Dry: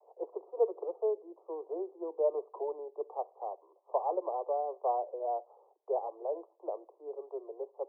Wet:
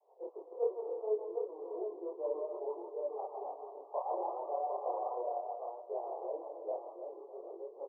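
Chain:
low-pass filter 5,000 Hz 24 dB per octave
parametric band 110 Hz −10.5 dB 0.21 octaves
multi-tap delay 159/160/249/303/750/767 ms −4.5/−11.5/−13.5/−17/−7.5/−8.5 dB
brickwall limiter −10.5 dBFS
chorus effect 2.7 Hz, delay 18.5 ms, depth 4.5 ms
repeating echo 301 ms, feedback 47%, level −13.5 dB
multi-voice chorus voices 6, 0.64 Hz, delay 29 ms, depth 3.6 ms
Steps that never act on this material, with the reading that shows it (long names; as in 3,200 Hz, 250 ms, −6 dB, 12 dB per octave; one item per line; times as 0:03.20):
low-pass filter 5,000 Hz: nothing at its input above 1,200 Hz
parametric band 110 Hz: nothing at its input below 290 Hz
brickwall limiter −10.5 dBFS: peak of its input −16.0 dBFS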